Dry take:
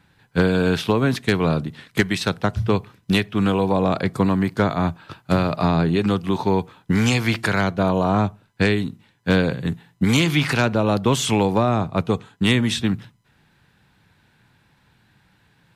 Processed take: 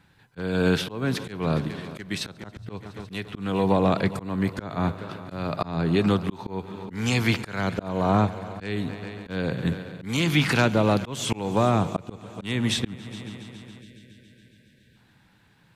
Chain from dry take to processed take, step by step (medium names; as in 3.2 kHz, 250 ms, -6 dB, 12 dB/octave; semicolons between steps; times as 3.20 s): multi-head delay 139 ms, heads all three, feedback 60%, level -22 dB; time-frequency box 13.81–14.96 s, 630–1500 Hz -26 dB; slow attack 312 ms; trim -1.5 dB